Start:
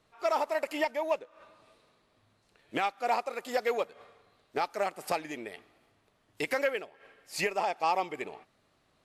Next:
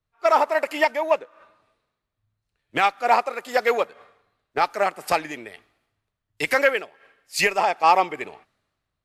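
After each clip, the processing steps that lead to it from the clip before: bell 1500 Hz +5 dB 1.4 oct; three-band expander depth 70%; gain +7 dB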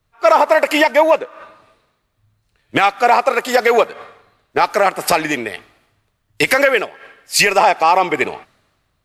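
compressor, threshold -18 dBFS, peak gain reduction 7.5 dB; maximiser +15.5 dB; gain -1 dB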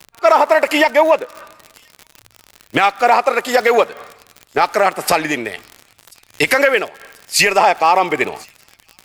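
crackle 66/s -23 dBFS; thin delay 1.038 s, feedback 52%, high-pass 4400 Hz, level -23 dB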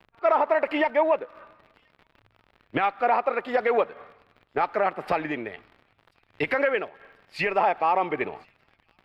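air absorption 430 m; gain -8 dB

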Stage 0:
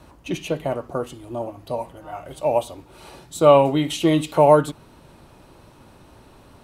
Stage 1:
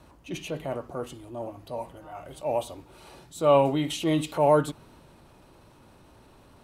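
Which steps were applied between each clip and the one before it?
transient shaper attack -5 dB, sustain +2 dB; gain -5.5 dB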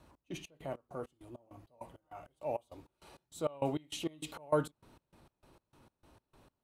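step gate "xx..xx.." 199 bpm -24 dB; gain -8 dB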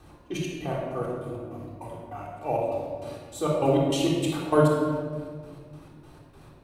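shoebox room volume 2200 m³, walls mixed, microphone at 3.7 m; gain +6.5 dB

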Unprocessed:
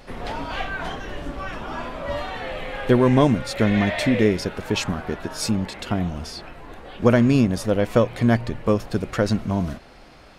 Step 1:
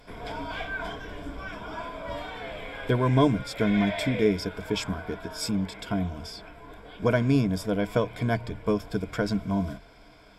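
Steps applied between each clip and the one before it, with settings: ripple EQ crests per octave 1.7, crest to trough 11 dB; gain -7 dB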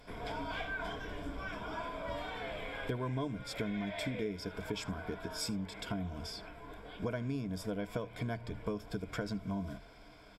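compressor 5:1, threshold -31 dBFS, peak gain reduction 14 dB; echo 76 ms -22.5 dB; gain -3.5 dB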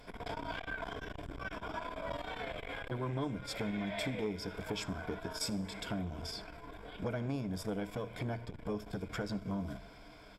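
Schroeder reverb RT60 1.1 s, combs from 26 ms, DRR 17.5 dB; core saturation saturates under 460 Hz; gain +2 dB

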